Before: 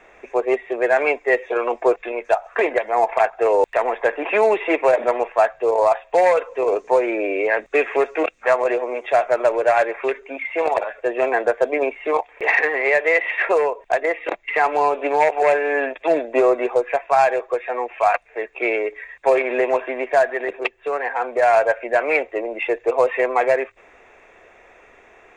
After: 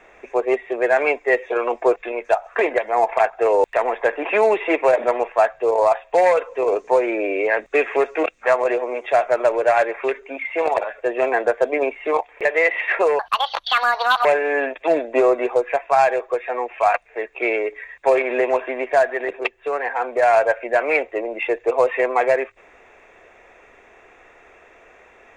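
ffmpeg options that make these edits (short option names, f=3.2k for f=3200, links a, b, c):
-filter_complex "[0:a]asplit=4[a][b][c][d];[a]atrim=end=12.452[e];[b]atrim=start=12.948:end=13.694[f];[c]atrim=start=13.69:end=15.45,asetpts=PTS-STARTPTS,asetrate=73206,aresample=44100[g];[d]atrim=start=15.446[h];[e][f]acrossfade=d=0.004:c1=hsin:c2=hsin[i];[i][g]acrossfade=d=0.004:c1=hsin:c2=hsin[j];[j][h]acrossfade=d=0.004:c1=hsin:c2=hsin"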